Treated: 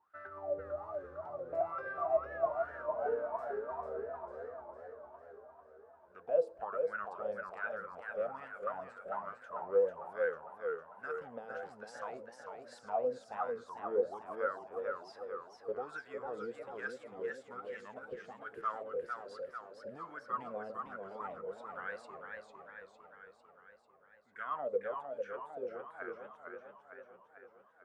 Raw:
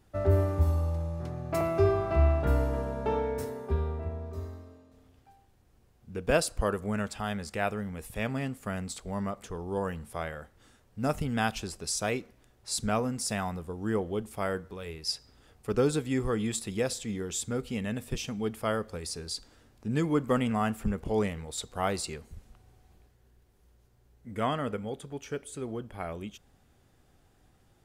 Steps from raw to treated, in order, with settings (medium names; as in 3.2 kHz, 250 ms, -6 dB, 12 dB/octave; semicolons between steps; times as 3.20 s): de-hum 110.5 Hz, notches 10; peak limiter -21.5 dBFS, peak gain reduction 8.5 dB; wah-wah 1.2 Hz 480–1600 Hz, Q 16; modulated delay 450 ms, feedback 60%, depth 160 cents, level -5 dB; trim +9.5 dB